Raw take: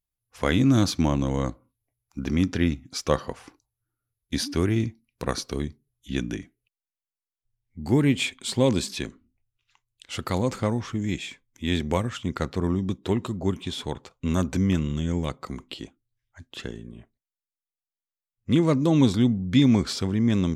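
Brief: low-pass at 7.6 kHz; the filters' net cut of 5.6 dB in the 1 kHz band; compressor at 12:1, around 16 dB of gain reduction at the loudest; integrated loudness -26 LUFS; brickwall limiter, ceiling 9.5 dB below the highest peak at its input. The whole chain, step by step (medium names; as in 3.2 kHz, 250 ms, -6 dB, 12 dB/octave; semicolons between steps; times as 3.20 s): low-pass 7.6 kHz; peaking EQ 1 kHz -7 dB; compression 12:1, threshold -31 dBFS; trim +13 dB; peak limiter -14 dBFS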